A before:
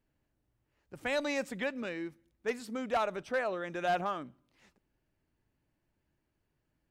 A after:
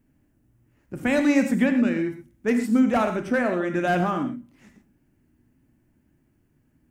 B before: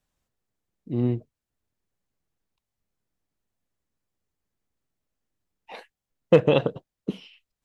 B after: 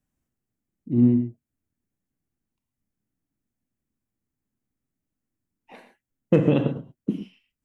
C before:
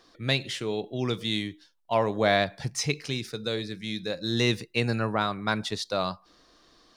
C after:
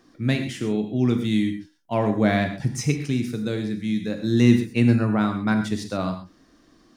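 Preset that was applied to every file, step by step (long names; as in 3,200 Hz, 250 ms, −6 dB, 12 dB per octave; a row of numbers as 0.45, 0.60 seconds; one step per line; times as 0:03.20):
octave-band graphic EQ 125/250/500/1,000/4,000 Hz +4/+9/−4/−4/−10 dB
reverb whose tail is shaped and stops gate 150 ms flat, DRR 5.5 dB
loudness normalisation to −23 LKFS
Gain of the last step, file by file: +10.5, −2.5, +2.0 decibels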